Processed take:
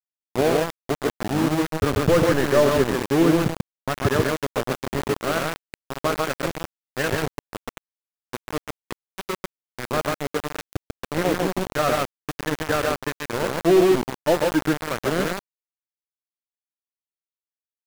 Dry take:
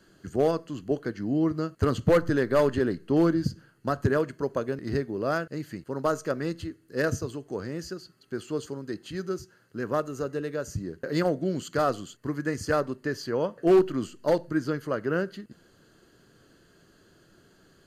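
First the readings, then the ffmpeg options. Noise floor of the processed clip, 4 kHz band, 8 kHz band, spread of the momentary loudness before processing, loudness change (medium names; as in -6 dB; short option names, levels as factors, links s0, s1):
under -85 dBFS, +11.0 dB, +10.0 dB, 13 LU, +5.0 dB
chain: -af "lowpass=f=3300:w=0.5412,lowpass=f=3300:w=1.3066,aecho=1:1:102|139.9:0.355|0.794,flanger=delay=2.2:depth=6.3:regen=83:speed=0.97:shape=sinusoidal,afftdn=nr=13:nf=-45,aeval=exprs='val(0)*gte(abs(val(0)),0.0398)':c=same,volume=2.37"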